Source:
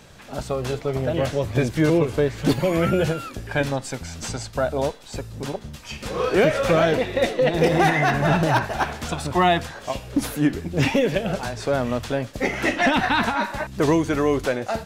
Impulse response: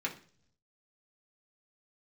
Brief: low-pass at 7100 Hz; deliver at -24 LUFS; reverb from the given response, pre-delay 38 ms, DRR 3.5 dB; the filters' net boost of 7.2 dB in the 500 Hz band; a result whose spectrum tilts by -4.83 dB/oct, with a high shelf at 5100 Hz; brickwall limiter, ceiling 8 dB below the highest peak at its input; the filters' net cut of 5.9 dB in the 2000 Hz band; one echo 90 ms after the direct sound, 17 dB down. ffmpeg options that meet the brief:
-filter_complex "[0:a]lowpass=7.1k,equalizer=f=500:t=o:g=9,equalizer=f=2k:t=o:g=-7.5,highshelf=f=5.1k:g=-6,alimiter=limit=-9.5dB:level=0:latency=1,aecho=1:1:90:0.141,asplit=2[a][b];[1:a]atrim=start_sample=2205,adelay=38[c];[b][c]afir=irnorm=-1:irlink=0,volume=-7.5dB[d];[a][d]amix=inputs=2:normalize=0,volume=-5dB"

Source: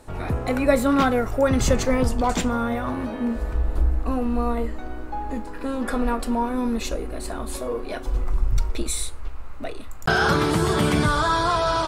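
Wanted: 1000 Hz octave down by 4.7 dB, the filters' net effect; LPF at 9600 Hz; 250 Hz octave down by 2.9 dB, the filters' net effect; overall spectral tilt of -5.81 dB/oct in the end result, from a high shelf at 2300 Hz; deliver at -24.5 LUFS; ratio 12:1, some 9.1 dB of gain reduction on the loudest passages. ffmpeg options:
-af "lowpass=9.6k,equalizer=f=250:t=o:g=-3,equalizer=f=1k:t=o:g=-4,highshelf=f=2.3k:g=-9,acompressor=threshold=-23dB:ratio=12,volume=6dB"

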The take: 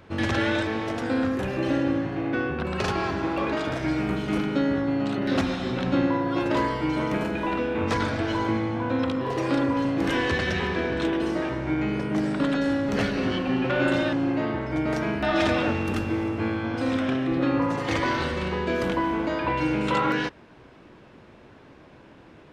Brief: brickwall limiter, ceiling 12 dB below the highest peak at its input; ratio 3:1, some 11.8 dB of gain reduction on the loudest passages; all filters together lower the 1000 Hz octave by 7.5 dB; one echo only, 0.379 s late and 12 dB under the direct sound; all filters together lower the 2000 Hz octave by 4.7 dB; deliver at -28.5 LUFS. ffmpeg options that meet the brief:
-af "equalizer=f=1k:t=o:g=-8.5,equalizer=f=2k:t=o:g=-3,acompressor=threshold=-37dB:ratio=3,alimiter=level_in=11dB:limit=-24dB:level=0:latency=1,volume=-11dB,aecho=1:1:379:0.251,volume=14.5dB"

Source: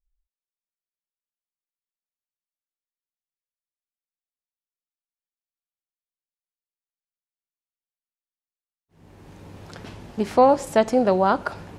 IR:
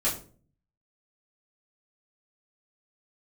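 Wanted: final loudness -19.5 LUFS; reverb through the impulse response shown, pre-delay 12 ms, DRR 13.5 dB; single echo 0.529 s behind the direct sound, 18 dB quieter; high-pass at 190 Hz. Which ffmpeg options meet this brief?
-filter_complex "[0:a]highpass=190,aecho=1:1:529:0.126,asplit=2[a][b];[1:a]atrim=start_sample=2205,adelay=12[c];[b][c]afir=irnorm=-1:irlink=0,volume=-22.5dB[d];[a][d]amix=inputs=2:normalize=0,volume=0.5dB"

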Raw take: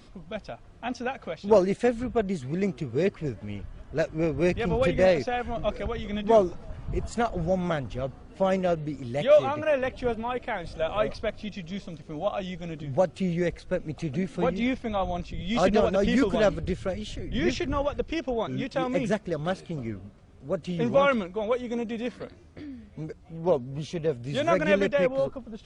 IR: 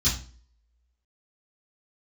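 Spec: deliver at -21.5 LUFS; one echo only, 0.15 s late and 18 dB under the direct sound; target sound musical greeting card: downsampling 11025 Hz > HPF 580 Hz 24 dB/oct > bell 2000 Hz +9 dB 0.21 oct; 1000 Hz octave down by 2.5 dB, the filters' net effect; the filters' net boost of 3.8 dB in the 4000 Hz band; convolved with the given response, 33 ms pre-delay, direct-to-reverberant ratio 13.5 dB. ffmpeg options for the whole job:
-filter_complex "[0:a]equalizer=f=1k:t=o:g=-3.5,equalizer=f=4k:t=o:g=5,aecho=1:1:150:0.126,asplit=2[a][b];[1:a]atrim=start_sample=2205,adelay=33[c];[b][c]afir=irnorm=-1:irlink=0,volume=-23.5dB[d];[a][d]amix=inputs=2:normalize=0,aresample=11025,aresample=44100,highpass=f=580:w=0.5412,highpass=f=580:w=1.3066,equalizer=f=2k:t=o:w=0.21:g=9,volume=9.5dB"

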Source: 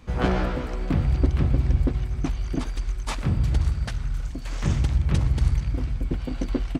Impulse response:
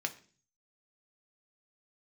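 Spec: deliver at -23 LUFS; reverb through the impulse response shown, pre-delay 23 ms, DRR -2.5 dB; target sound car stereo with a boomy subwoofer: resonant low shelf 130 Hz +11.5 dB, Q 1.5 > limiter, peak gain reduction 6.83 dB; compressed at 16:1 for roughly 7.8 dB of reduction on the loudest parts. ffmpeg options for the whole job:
-filter_complex "[0:a]acompressor=threshold=-23dB:ratio=16,asplit=2[a][b];[1:a]atrim=start_sample=2205,adelay=23[c];[b][c]afir=irnorm=-1:irlink=0,volume=-0.5dB[d];[a][d]amix=inputs=2:normalize=0,lowshelf=f=130:t=q:w=1.5:g=11.5,volume=-1dB,alimiter=limit=-13.5dB:level=0:latency=1"

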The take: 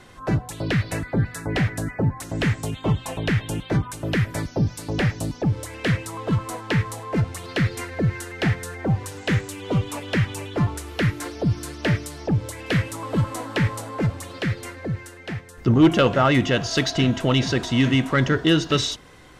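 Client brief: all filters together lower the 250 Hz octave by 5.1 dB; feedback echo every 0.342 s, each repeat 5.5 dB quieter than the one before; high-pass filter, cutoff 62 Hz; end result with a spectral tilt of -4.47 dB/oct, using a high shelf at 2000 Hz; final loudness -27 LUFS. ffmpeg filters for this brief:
-af "highpass=62,equalizer=f=250:t=o:g=-7.5,highshelf=f=2k:g=4,aecho=1:1:342|684|1026|1368|1710|2052|2394:0.531|0.281|0.149|0.079|0.0419|0.0222|0.0118,volume=-3.5dB"

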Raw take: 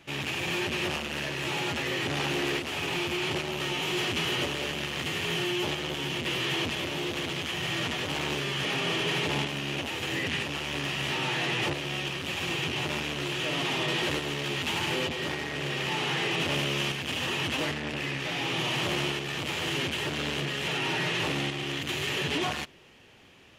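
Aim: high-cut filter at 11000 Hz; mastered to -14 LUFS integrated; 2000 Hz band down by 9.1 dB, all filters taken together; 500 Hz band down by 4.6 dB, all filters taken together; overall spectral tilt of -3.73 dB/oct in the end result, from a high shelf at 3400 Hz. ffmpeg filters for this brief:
-af "lowpass=11k,equalizer=f=500:t=o:g=-6,equalizer=f=2k:t=o:g=-8.5,highshelf=f=3.4k:g=-8.5,volume=21dB"

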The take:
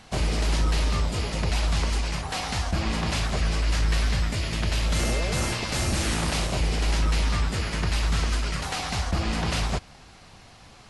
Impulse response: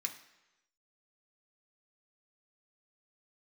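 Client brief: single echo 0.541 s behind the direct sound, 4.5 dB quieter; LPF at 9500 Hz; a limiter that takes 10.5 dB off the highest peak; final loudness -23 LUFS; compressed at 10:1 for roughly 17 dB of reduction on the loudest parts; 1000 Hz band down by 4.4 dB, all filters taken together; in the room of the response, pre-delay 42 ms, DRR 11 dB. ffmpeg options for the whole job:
-filter_complex "[0:a]lowpass=9.5k,equalizer=f=1k:t=o:g=-6,acompressor=threshold=-38dB:ratio=10,alimiter=level_in=13dB:limit=-24dB:level=0:latency=1,volume=-13dB,aecho=1:1:541:0.596,asplit=2[a][b];[1:a]atrim=start_sample=2205,adelay=42[c];[b][c]afir=irnorm=-1:irlink=0,volume=-10.5dB[d];[a][d]amix=inputs=2:normalize=0,volume=21.5dB"

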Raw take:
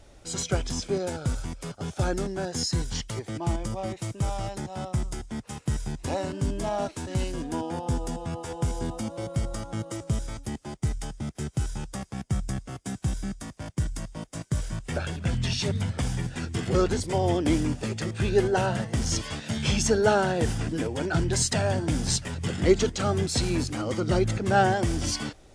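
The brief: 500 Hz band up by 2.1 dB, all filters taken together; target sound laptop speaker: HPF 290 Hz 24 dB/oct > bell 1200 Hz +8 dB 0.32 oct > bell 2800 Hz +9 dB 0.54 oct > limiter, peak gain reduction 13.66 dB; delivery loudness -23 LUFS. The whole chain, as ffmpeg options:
-af "highpass=f=290:w=0.5412,highpass=f=290:w=1.3066,equalizer=f=500:t=o:g=3,equalizer=f=1.2k:t=o:w=0.32:g=8,equalizer=f=2.8k:t=o:w=0.54:g=9,volume=9dB,alimiter=limit=-11dB:level=0:latency=1"

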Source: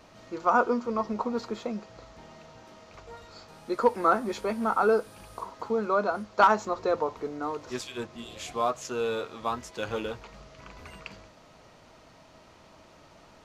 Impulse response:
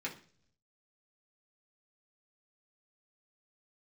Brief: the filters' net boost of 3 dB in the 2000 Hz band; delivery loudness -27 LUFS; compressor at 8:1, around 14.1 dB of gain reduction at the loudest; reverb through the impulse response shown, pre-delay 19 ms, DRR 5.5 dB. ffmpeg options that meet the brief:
-filter_complex "[0:a]equalizer=f=2k:t=o:g=5,acompressor=threshold=-28dB:ratio=8,asplit=2[a][b];[1:a]atrim=start_sample=2205,adelay=19[c];[b][c]afir=irnorm=-1:irlink=0,volume=-7.5dB[d];[a][d]amix=inputs=2:normalize=0,volume=7.5dB"

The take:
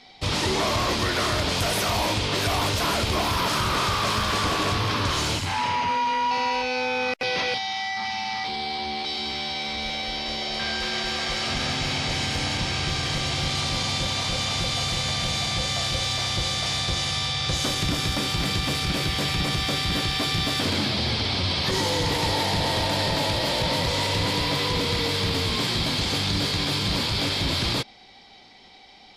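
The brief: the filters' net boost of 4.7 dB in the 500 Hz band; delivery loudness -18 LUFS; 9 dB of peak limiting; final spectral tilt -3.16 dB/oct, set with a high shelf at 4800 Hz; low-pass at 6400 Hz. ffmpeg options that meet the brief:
-af "lowpass=6.4k,equalizer=f=500:t=o:g=5.5,highshelf=f=4.8k:g=7.5,volume=9.5dB,alimiter=limit=-11dB:level=0:latency=1"

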